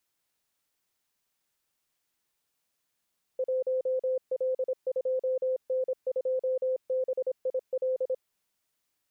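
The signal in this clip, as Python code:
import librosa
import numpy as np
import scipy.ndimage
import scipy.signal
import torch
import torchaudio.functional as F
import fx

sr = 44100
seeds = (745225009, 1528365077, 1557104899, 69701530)

y = fx.morse(sr, text='1L2N2BIL', wpm=26, hz=516.0, level_db=-25.0)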